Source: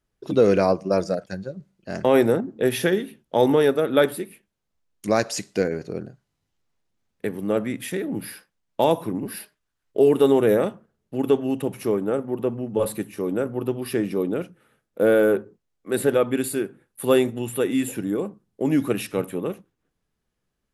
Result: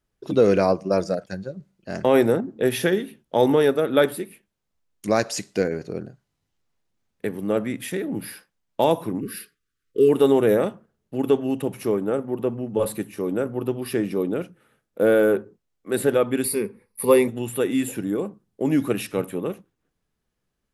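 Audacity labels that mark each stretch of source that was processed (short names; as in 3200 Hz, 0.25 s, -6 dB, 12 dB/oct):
9.210000	10.090000	brick-wall FIR band-stop 520–1100 Hz
16.440000	17.280000	ripple EQ crests per octave 0.89, crest to trough 14 dB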